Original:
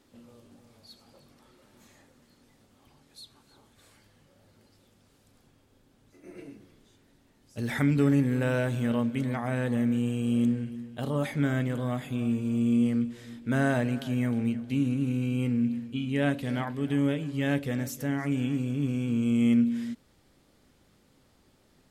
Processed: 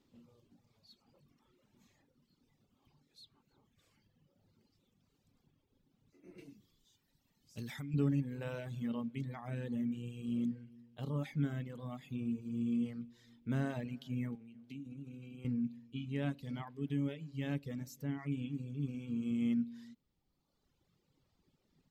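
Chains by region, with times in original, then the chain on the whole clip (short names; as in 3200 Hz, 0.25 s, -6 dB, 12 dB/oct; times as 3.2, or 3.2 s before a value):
6.38–7.94 high shelf 2900 Hz +11.5 dB + compressor 16:1, threshold -30 dBFS
14.35–15.45 HPF 130 Hz + compressor 8:1, threshold -31 dBFS
whole clip: reverb removal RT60 1.8 s; fifteen-band EQ 160 Hz +6 dB, 630 Hz -5 dB, 1600 Hz -6 dB, 10000 Hz -12 dB; gain -9 dB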